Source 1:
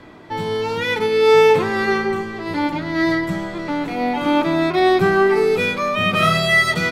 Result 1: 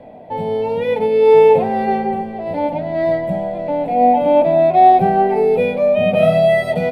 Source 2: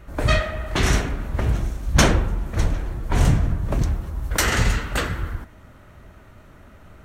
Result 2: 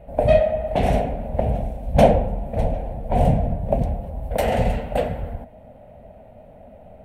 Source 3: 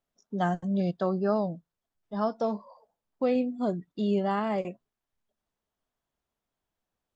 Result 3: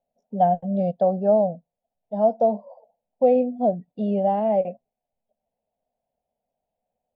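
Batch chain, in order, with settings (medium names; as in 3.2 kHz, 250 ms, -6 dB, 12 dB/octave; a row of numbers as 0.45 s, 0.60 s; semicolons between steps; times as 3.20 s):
FFT filter 110 Hz 0 dB, 240 Hz +7 dB, 340 Hz -7 dB, 510 Hz +13 dB, 740 Hz +15 dB, 1.2 kHz -15 dB, 2.5 kHz -3 dB, 6.5 kHz -19 dB, 9.3 kHz -7 dB; trim -2.5 dB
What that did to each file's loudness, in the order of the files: +3.0 LU, +1.0 LU, +7.5 LU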